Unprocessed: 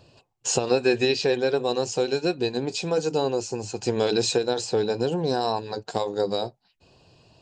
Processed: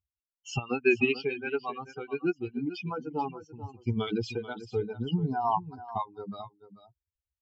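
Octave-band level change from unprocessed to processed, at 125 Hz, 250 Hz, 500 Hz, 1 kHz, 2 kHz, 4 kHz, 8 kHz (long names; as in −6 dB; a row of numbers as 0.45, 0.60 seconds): −1.5 dB, −4.0 dB, −10.0 dB, −2.5 dB, −1.0 dB, −14.0 dB, below −20 dB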